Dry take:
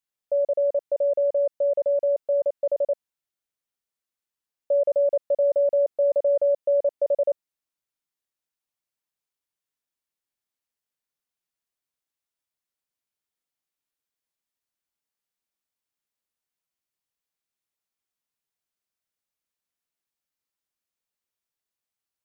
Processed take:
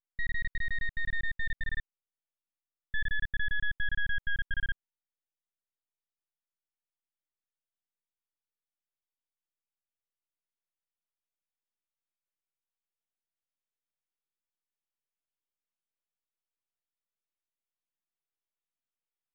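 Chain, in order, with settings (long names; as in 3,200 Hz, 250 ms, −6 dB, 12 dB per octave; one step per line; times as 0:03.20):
gliding playback speed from 168% → 62%
full-wave rectification
downsampling to 8,000 Hz
level −6.5 dB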